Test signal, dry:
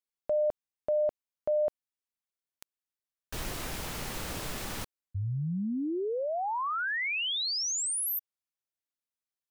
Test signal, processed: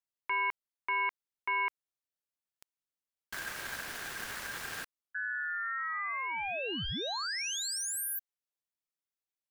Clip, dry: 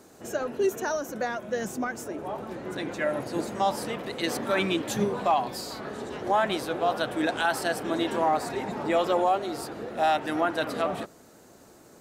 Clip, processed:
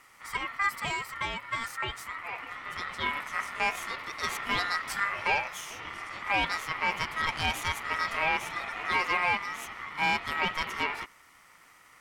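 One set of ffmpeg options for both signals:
-af "aeval=exprs='0.2*(cos(1*acos(clip(val(0)/0.2,-1,1)))-cos(1*PI/2))+0.0251*(cos(4*acos(clip(val(0)/0.2,-1,1)))-cos(4*PI/2))+0.00141*(cos(5*acos(clip(val(0)/0.2,-1,1)))-cos(5*PI/2))':c=same,aeval=exprs='val(0)*sin(2*PI*1600*n/s)':c=same,volume=-1.5dB"

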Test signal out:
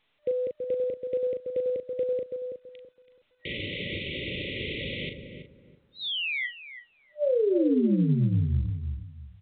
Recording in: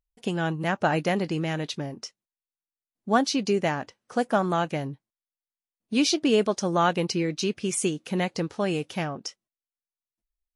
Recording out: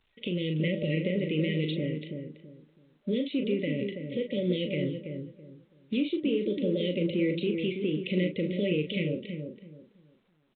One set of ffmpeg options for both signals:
-filter_complex "[0:a]highpass=81,afftfilt=real='re*(1-between(b*sr/4096,600,1900))':imag='im*(1-between(b*sr/4096,600,1900))':win_size=4096:overlap=0.75,lowpass=f=3.1k:p=1,tiltshelf=f=1.1k:g=-6.5,acrossover=split=720[a][b];[b]acompressor=threshold=-39dB:ratio=12[c];[a][c]amix=inputs=2:normalize=0,alimiter=level_in=5.5dB:limit=-24dB:level=0:latency=1:release=140,volume=-5.5dB,acontrast=53,asplit=2[d][e];[e]adelay=39,volume=-7dB[f];[d][f]amix=inputs=2:normalize=0,asplit=2[g][h];[h]adelay=329,lowpass=f=910:p=1,volume=-5.5dB,asplit=2[i][j];[j]adelay=329,lowpass=f=910:p=1,volume=0.27,asplit=2[k][l];[l]adelay=329,lowpass=f=910:p=1,volume=0.27,asplit=2[m][n];[n]adelay=329,lowpass=f=910:p=1,volume=0.27[o];[i][k][m][o]amix=inputs=4:normalize=0[p];[g][p]amix=inputs=2:normalize=0,volume=2.5dB" -ar 8000 -c:a pcm_alaw

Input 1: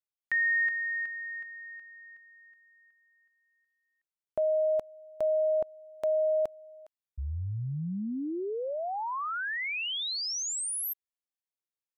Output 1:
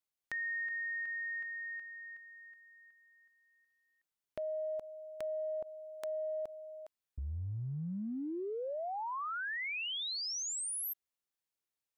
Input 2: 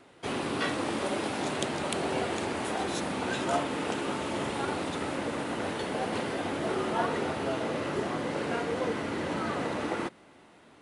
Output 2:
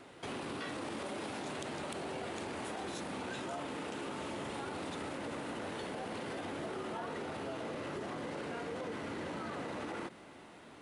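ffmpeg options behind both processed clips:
-af "acompressor=threshold=-39dB:ratio=6:attack=0.82:release=79:knee=1:detection=peak,volume=2dB"

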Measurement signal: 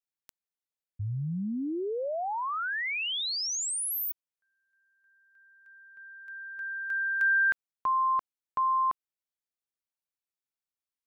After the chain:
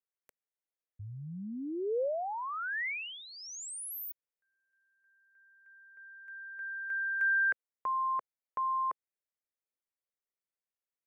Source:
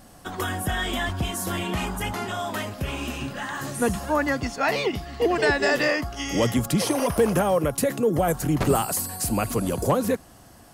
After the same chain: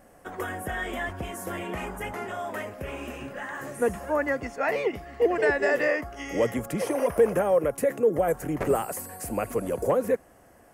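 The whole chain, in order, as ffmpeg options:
-af "equalizer=f=125:t=o:w=1:g=-3,equalizer=f=500:t=o:w=1:g=10,equalizer=f=2k:t=o:w=1:g=8,equalizer=f=4k:t=o:w=1:g=-11,volume=-8.5dB"

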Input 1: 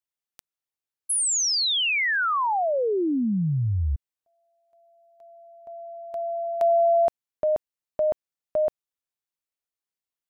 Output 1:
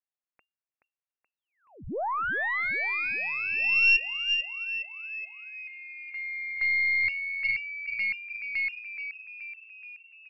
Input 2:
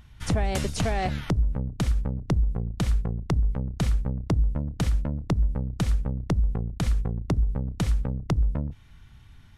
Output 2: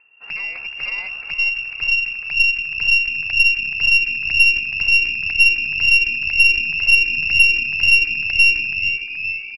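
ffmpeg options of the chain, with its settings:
-filter_complex "[0:a]asubboost=boost=9:cutoff=65,asplit=2[a][b];[b]asplit=8[c][d][e][f][g][h][i][j];[c]adelay=426,afreqshift=-87,volume=-8dB[k];[d]adelay=852,afreqshift=-174,volume=-12.2dB[l];[e]adelay=1278,afreqshift=-261,volume=-16.3dB[m];[f]adelay=1704,afreqshift=-348,volume=-20.5dB[n];[g]adelay=2130,afreqshift=-435,volume=-24.6dB[o];[h]adelay=2556,afreqshift=-522,volume=-28.8dB[p];[i]adelay=2982,afreqshift=-609,volume=-32.9dB[q];[j]adelay=3408,afreqshift=-696,volume=-37.1dB[r];[k][l][m][n][o][p][q][r]amix=inputs=8:normalize=0[s];[a][s]amix=inputs=2:normalize=0,lowpass=f=2.4k:t=q:w=0.5098,lowpass=f=2.4k:t=q:w=0.6013,lowpass=f=2.4k:t=q:w=0.9,lowpass=f=2.4k:t=q:w=2.563,afreqshift=-2800,aeval=exprs='1.19*(cos(1*acos(clip(val(0)/1.19,-1,1)))-cos(1*PI/2))+0.168*(cos(4*acos(clip(val(0)/1.19,-1,1)))-cos(4*PI/2))':c=same,volume=-5.5dB"

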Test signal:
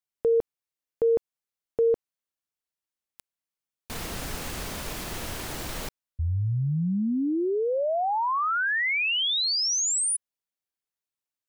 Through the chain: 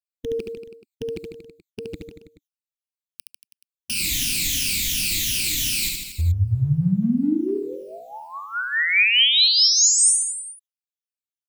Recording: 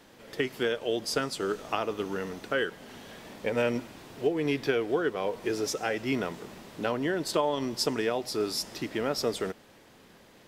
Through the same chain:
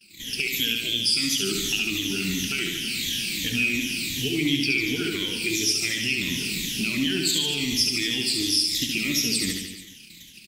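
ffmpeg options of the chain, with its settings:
-filter_complex "[0:a]afftfilt=real='re*pow(10,19/40*sin(2*PI*(1.1*log(max(b,1)*sr/1024/100)/log(2)-(-2.8)*(pts-256)/sr)))':imag='im*pow(10,19/40*sin(2*PI*(1.1*log(max(b,1)*sr/1024/100)/log(2)-(-2.8)*(pts-256)/sr)))':win_size=1024:overlap=0.75,agate=range=-33dB:threshold=-47dB:ratio=3:release=70:detection=rms,firequalizer=gain_entry='entry(290,0);entry(540,-29);entry(1200,-22);entry(2400,12)':delay=0.05:min_phase=1,acompressor=threshold=-29dB:ratio=3:attack=0.14:release=181:knee=1:detection=peak,asplit=2[a][b];[b]aecho=0:1:70|147|231.7|324.9|427.4:0.631|0.398|0.251|0.158|0.1[c];[a][c]amix=inputs=2:normalize=0,volume=7.5dB"

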